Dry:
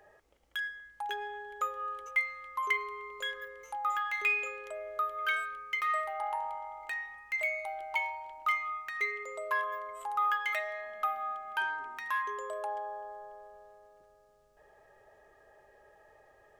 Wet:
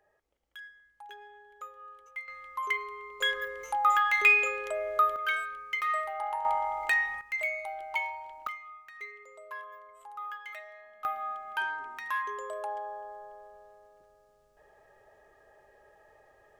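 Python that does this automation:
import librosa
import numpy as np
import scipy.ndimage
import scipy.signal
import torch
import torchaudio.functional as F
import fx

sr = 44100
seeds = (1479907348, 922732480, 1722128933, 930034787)

y = fx.gain(x, sr, db=fx.steps((0.0, -11.0), (2.28, -0.5), (3.21, 8.0), (5.16, 1.0), (6.45, 11.0), (7.21, 0.5), (8.47, -10.5), (11.05, 0.5)))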